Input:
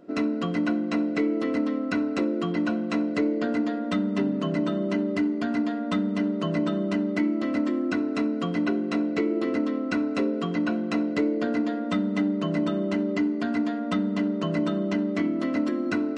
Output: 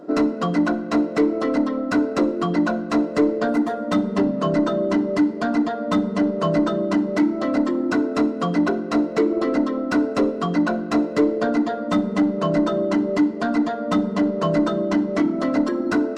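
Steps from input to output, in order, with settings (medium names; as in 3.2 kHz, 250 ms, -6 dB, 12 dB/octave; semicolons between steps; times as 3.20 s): 3.48–3.91 s: median filter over 9 samples; reverb removal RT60 1.1 s; overdrive pedal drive 16 dB, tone 3.3 kHz, clips at -14.5 dBFS; peaking EQ 2.5 kHz -13.5 dB 1.3 oct; simulated room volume 1800 m³, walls mixed, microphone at 0.45 m; trim +6.5 dB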